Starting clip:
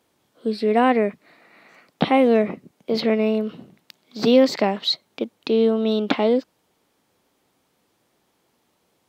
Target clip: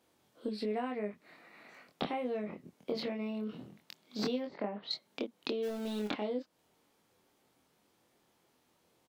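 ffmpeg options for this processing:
ffmpeg -i in.wav -filter_complex "[0:a]asettb=1/sr,asplit=3[link_01][link_02][link_03];[link_01]atrim=end=4.464[link_04];[link_02]atrim=start=4.46:end=4.91,asetpts=PTS-STARTPTS,afade=type=in:duration=0.004:curve=qsin,afade=type=out:start_time=0.446:duration=0.004:curve=qsin,lowpass=1600[link_05];[link_03]atrim=start=4.906[link_06];[link_04][link_05]acrossfade=duration=0.004:curve1=hsin:curve2=qsin[link_07];[link_07][link_06]acrossfade=duration=0.004:curve1=qsin:curve2=hsin,acompressor=threshold=-27dB:ratio=12,asplit=3[link_08][link_09][link_10];[link_08]afade=type=out:start_time=5.62:duration=0.02[link_11];[link_09]aeval=exprs='val(0)*gte(abs(val(0)),0.0141)':channel_layout=same,afade=type=in:start_time=5.62:duration=0.02,afade=type=out:start_time=6.09:duration=0.02[link_12];[link_10]afade=type=in:start_time=6.09:duration=0.02[link_13];[link_11][link_12][link_13]amix=inputs=3:normalize=0,asplit=2[link_14][link_15];[link_15]adelay=24,volume=-3dB[link_16];[link_14][link_16]amix=inputs=2:normalize=0,volume=-6.5dB" out.wav

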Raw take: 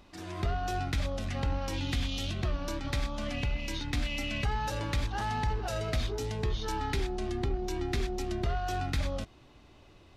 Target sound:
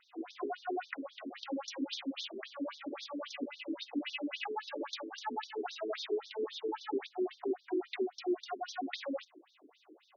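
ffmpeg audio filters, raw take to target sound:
ffmpeg -i in.wav -af "equalizer=frequency=190:width=0.58:gain=9,afftfilt=real='re*between(b*sr/1024,330*pow(4800/330,0.5+0.5*sin(2*PI*3.7*pts/sr))/1.41,330*pow(4800/330,0.5+0.5*sin(2*PI*3.7*pts/sr))*1.41)':imag='im*between(b*sr/1024,330*pow(4800/330,0.5+0.5*sin(2*PI*3.7*pts/sr))/1.41,330*pow(4800/330,0.5+0.5*sin(2*PI*3.7*pts/sr))*1.41)':win_size=1024:overlap=0.75,volume=1dB" out.wav

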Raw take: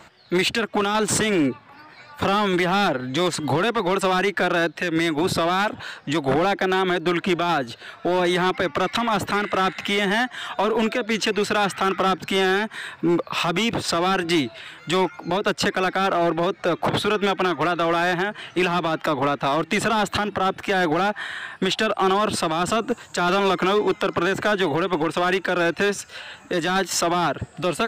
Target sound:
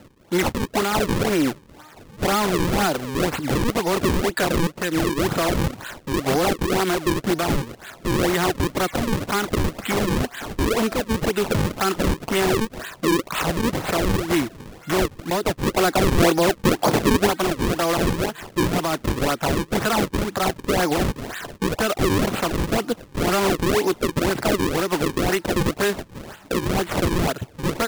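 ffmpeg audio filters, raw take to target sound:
ffmpeg -i in.wav -filter_complex "[0:a]asettb=1/sr,asplit=3[link_01][link_02][link_03];[link_01]atrim=end=15.714[link_04];[link_02]atrim=start=15.71:end=17.27,asetpts=PTS-STARTPTS,afade=type=in:duration=0.004:curve=qsin,afade=type=out:start_time=1.556:duration=0.004:curve=qsin,equalizer=frequency=400:width=0.49:gain=5[link_05];[link_03]atrim=start=17.266[link_06];[link_04][link_05]acrossfade=duration=0.004:curve1=hsin:curve2=qsin[link_07];[link_07][link_06]acrossfade=duration=0.004:curve1=qsin:curve2=hsin,acrusher=samples=37:mix=1:aa=0.000001:lfo=1:lforange=59.2:lforate=2" out.wav

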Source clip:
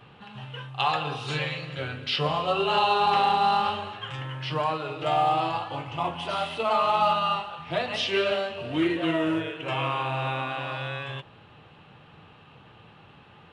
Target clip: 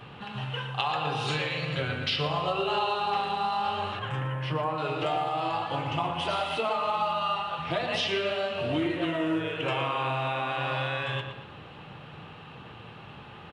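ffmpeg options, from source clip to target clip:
ffmpeg -i in.wav -filter_complex "[0:a]asettb=1/sr,asplit=3[link_01][link_02][link_03];[link_01]atrim=end=3.994[link_04];[link_02]atrim=start=3.99:end=4.78,asetpts=PTS-STARTPTS,afade=type=in:duration=0.004:curve=qsin,afade=type=out:start_time=0.786:duration=0.004:curve=qsin,equalizer=frequency=4600:width_type=o:width=1.8:gain=-14[link_05];[link_03]atrim=start=4.776[link_06];[link_04][link_05]acrossfade=duration=0.004:curve1=hsin:curve2=qsin[link_07];[link_07][link_06]acrossfade=duration=0.004:curve1=qsin:curve2=hsin,acompressor=threshold=-32dB:ratio=6,asplit=2[link_08][link_09];[link_09]adelay=116,lowpass=frequency=3700:poles=1,volume=-7dB,asplit=2[link_10][link_11];[link_11]adelay=116,lowpass=frequency=3700:poles=1,volume=0.46,asplit=2[link_12][link_13];[link_13]adelay=116,lowpass=frequency=3700:poles=1,volume=0.46,asplit=2[link_14][link_15];[link_15]adelay=116,lowpass=frequency=3700:poles=1,volume=0.46,asplit=2[link_16][link_17];[link_17]adelay=116,lowpass=frequency=3700:poles=1,volume=0.46[link_18];[link_08][link_10][link_12][link_14][link_16][link_18]amix=inputs=6:normalize=0,volume=5.5dB" out.wav

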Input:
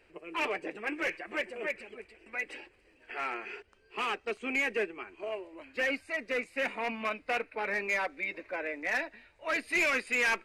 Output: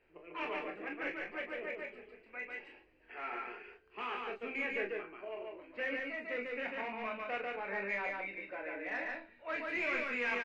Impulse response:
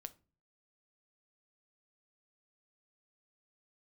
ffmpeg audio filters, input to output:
-filter_complex "[0:a]lowpass=2800,aecho=1:1:25|41:0.501|0.447,asplit=2[link_01][link_02];[1:a]atrim=start_sample=2205,adelay=144[link_03];[link_02][link_03]afir=irnorm=-1:irlink=0,volume=3dB[link_04];[link_01][link_04]amix=inputs=2:normalize=0,volume=-8.5dB"

